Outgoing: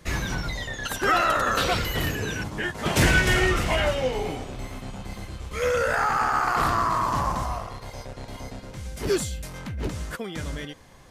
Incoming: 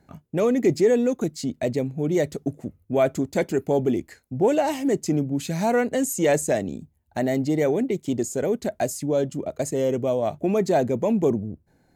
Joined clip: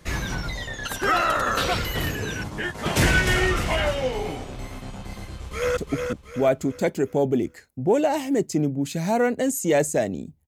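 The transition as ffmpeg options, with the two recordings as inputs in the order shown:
ffmpeg -i cue0.wav -i cue1.wav -filter_complex "[0:a]apad=whole_dur=10.47,atrim=end=10.47,atrim=end=5.772[link_01];[1:a]atrim=start=2.308:end=7.01[link_02];[link_01][link_02]acrossfade=duration=0.004:curve1=hsin:curve2=hsin,asplit=2[link_03][link_04];[link_04]afade=type=in:start_time=5.23:duration=0.01,afade=type=out:start_time=5.77:duration=0.01,aecho=0:1:360|720|1080|1440|1800:0.562341|0.224937|0.0899746|0.0359898|0.0143959[link_05];[link_03][link_05]amix=inputs=2:normalize=0" out.wav

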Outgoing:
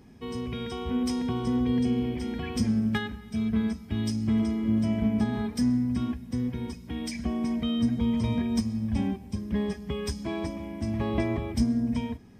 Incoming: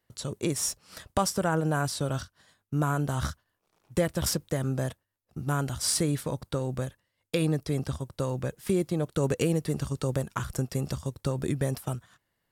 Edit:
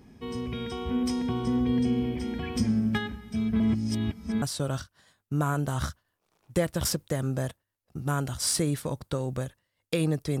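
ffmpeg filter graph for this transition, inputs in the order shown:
ffmpeg -i cue0.wav -i cue1.wav -filter_complex "[0:a]apad=whole_dur=10.4,atrim=end=10.4,asplit=2[link_01][link_02];[link_01]atrim=end=3.602[link_03];[link_02]atrim=start=3.598:end=4.422,asetpts=PTS-STARTPTS,areverse[link_04];[1:a]atrim=start=1.828:end=7.81[link_05];[link_03][link_04]acrossfade=duration=0.004:curve1=hsin:curve2=hsin[link_06];[link_06][link_05]acrossfade=duration=0.004:curve1=hsin:curve2=hsin" out.wav

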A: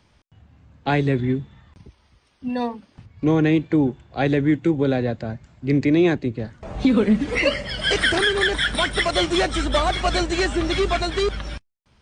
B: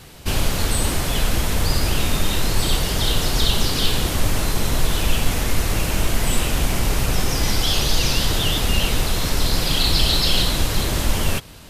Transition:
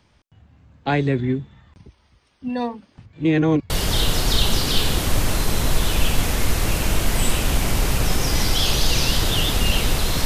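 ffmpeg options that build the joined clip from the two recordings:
ffmpeg -i cue0.wav -i cue1.wav -filter_complex "[0:a]apad=whole_dur=10.25,atrim=end=10.25,asplit=2[link_01][link_02];[link_01]atrim=end=3.132[link_03];[link_02]atrim=start=3.128:end=3.702,asetpts=PTS-STARTPTS,areverse[link_04];[1:a]atrim=start=2.778:end=9.33[link_05];[link_03][link_04]acrossfade=duration=0.004:curve1=hsin:curve2=hsin[link_06];[link_06][link_05]acrossfade=duration=0.004:curve1=hsin:curve2=hsin" out.wav

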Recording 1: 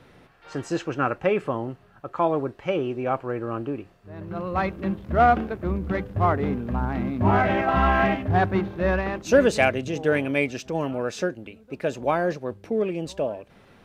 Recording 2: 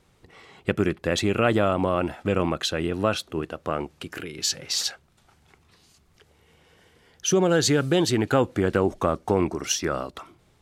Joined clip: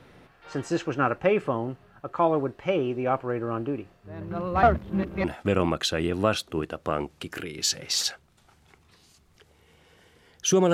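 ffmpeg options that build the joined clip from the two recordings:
ffmpeg -i cue0.wav -i cue1.wav -filter_complex "[0:a]apad=whole_dur=10.73,atrim=end=10.73,asplit=2[link_01][link_02];[link_01]atrim=end=4.632[link_03];[link_02]atrim=start=4.628:end=5.242,asetpts=PTS-STARTPTS,areverse[link_04];[1:a]atrim=start=2.038:end=7.53[link_05];[link_03][link_04]acrossfade=duration=0.004:curve1=hsin:curve2=hsin[link_06];[link_06][link_05]acrossfade=duration=0.004:curve1=hsin:curve2=hsin" out.wav

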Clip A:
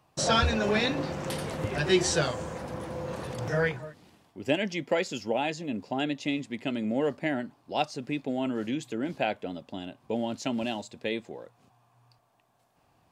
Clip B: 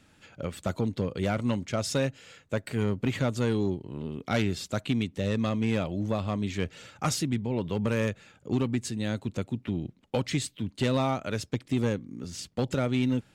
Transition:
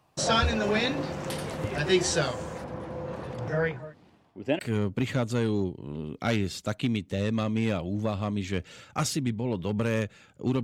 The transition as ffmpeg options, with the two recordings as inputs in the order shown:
ffmpeg -i cue0.wav -i cue1.wav -filter_complex "[0:a]asettb=1/sr,asplit=3[link_01][link_02][link_03];[link_01]atrim=end=2.644[link_04];[link_02]atrim=start=2.64:end=4.59,asetpts=PTS-STARTPTS,afade=type=in:duration=0.004:curve=qsin,afade=type=out:start_time=1.946:duration=0.004:curve=qsin,lowpass=frequency=2100:poles=1[link_05];[link_03]atrim=start=4.586[link_06];[link_04][link_05]acrossfade=duration=0.004:curve1=hsin:curve2=qsin[link_07];[link_07][link_06]acrossfade=duration=0.004:curve1=qsin:curve2=hsin,apad=whole_dur=10.63,atrim=end=10.63,atrim=end=4.592[link_08];[1:a]atrim=start=2.648:end=8.69[link_09];[link_08][link_09]acrossfade=duration=0.004:curve1=hsin:curve2=hsin" out.wav

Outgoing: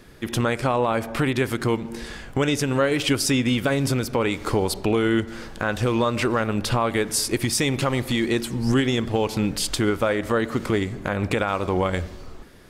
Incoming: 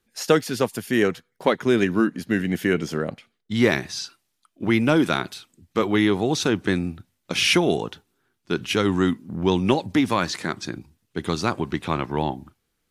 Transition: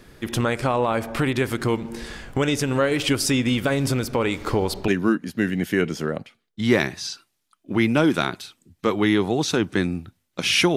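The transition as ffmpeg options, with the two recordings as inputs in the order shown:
ffmpeg -i cue0.wav -i cue1.wav -filter_complex "[0:a]asettb=1/sr,asplit=3[link_01][link_02][link_03];[link_01]atrim=end=4.424[link_04];[link_02]atrim=start=4.42:end=4.88,asetpts=PTS-STARTPTS,afade=type=in:duration=0.004:curve=qsin,afade=type=out:start_time=0.456:duration=0.004:curve=qsin,equalizer=frequency=9200:width=1.2:gain=-6[link_05];[link_03]atrim=start=4.876[link_06];[link_04][link_05]acrossfade=duration=0.004:curve1=hsin:curve2=qsin[link_07];[link_07][link_06]acrossfade=duration=0.004:curve1=qsin:curve2=hsin,apad=whole_dur=10.76,atrim=end=10.76,atrim=end=4.882[link_08];[1:a]atrim=start=1.798:end=7.68[link_09];[link_08][link_09]acrossfade=duration=0.004:curve1=hsin:curve2=hsin" out.wav

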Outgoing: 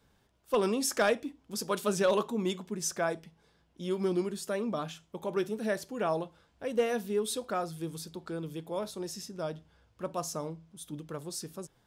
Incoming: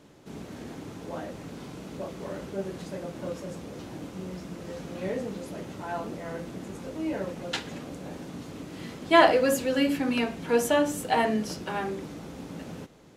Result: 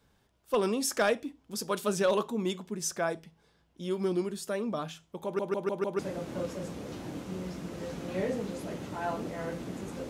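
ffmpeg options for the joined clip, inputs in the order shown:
ffmpeg -i cue0.wav -i cue1.wav -filter_complex "[0:a]apad=whole_dur=10.09,atrim=end=10.09,asplit=5[link_01][link_02][link_03][link_04][link_05];[link_01]atrim=end=5.392[link_06];[link_02]atrim=start=5.238:end=5.392[link_07];[link_03]atrim=start=5.238:end=5.392[link_08];[link_04]atrim=start=5.238:end=5.392[link_09];[link_05]atrim=start=5.238:end=5.392[link_10];[1:a]atrim=start=2.858:end=6.96[link_11];[link_06][link_07]acrossfade=duration=0.004:curve1=hsin:curve2=hsin[link_12];[link_12][link_08]acrossfade=duration=0.004:curve1=hsin:curve2=hsin[link_13];[link_13][link_09]acrossfade=duration=0.004:curve1=hsin:curve2=hsin[link_14];[link_14][link_10]acrossfade=duration=0.004:curve1=hsin:curve2=hsin[link_15];[link_15][link_11]acrossfade=duration=0.004:curve1=hsin:curve2=hsin" out.wav

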